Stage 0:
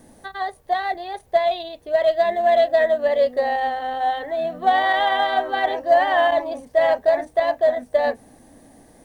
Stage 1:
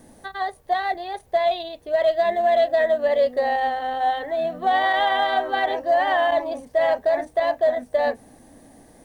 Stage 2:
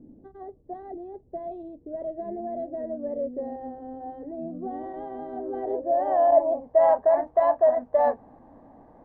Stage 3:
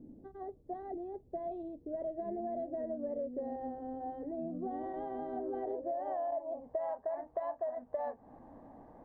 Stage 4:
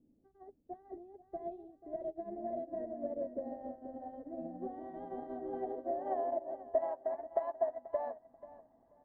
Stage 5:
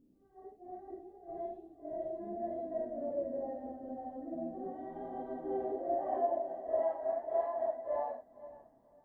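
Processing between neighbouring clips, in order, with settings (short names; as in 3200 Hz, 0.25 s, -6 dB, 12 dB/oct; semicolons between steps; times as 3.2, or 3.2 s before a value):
limiter -12 dBFS, peak gain reduction 5 dB
low-pass sweep 310 Hz -> 1000 Hz, 5.31–6.96; gain -3.5 dB
compressor 10:1, threshold -31 dBFS, peak gain reduction 18 dB; gain -3 dB
feedback echo 0.486 s, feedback 49%, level -7 dB; upward expander 2.5:1, over -46 dBFS; gain +6.5 dB
phase scrambler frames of 0.2 s; gain +1.5 dB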